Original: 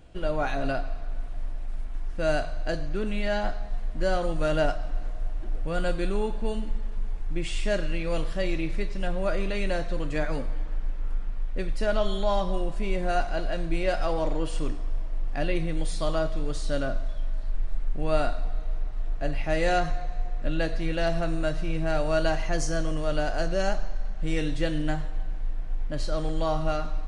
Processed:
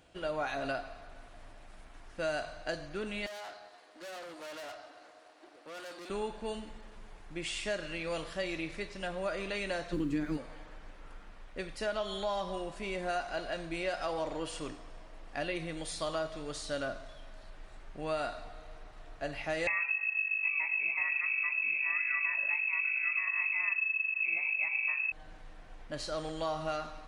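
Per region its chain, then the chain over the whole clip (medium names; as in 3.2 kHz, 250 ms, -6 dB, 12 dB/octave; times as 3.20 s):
3.26–6.10 s: Chebyshev high-pass 290 Hz, order 4 + peaking EQ 4.4 kHz +5.5 dB 0.41 oct + valve stage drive 39 dB, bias 0.6
9.92–10.36 s: resonant low shelf 430 Hz +11.5 dB, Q 3 + added noise brown -39 dBFS
19.67–25.12 s: short-mantissa float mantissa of 4-bit + frequency inversion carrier 2.6 kHz
whole clip: high-pass 110 Hz 6 dB/octave; bass shelf 440 Hz -9 dB; compression 5:1, threshold -29 dBFS; trim -1 dB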